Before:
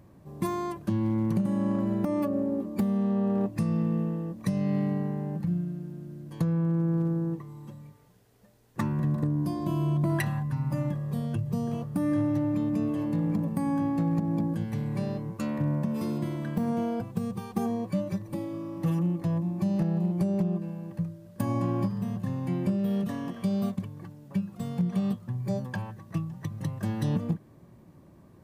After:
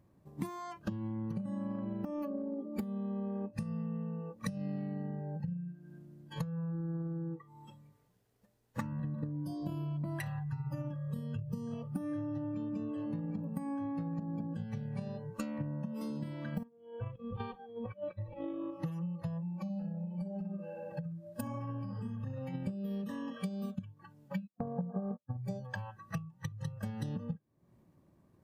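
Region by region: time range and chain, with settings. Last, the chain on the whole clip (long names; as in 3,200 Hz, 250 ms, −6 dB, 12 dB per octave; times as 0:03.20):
0:16.63–0:18.71: Chebyshev low-pass filter 3,500 Hz, order 3 + compressor whose output falls as the input rises −36 dBFS, ratio −0.5 + single-tap delay 142 ms −23.5 dB
0:19.57–0:22.54: tape delay 64 ms, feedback 56%, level −3 dB, low-pass 2,600 Hz + downward compressor 4 to 1, threshold −29 dBFS
0:24.47–0:25.37: parametric band 590 Hz +13 dB 2.1 octaves + noise gate −31 dBFS, range −33 dB + linear-phase brick-wall low-pass 1,700 Hz
whole clip: noise reduction from a noise print of the clip's start 19 dB; transient designer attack +6 dB, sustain +2 dB; downward compressor 4 to 1, threshold −45 dBFS; level +6 dB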